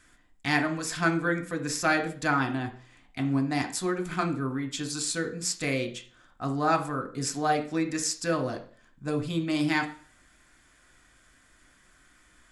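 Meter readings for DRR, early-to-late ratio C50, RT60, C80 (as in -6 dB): 4.0 dB, 12.0 dB, 0.45 s, 16.5 dB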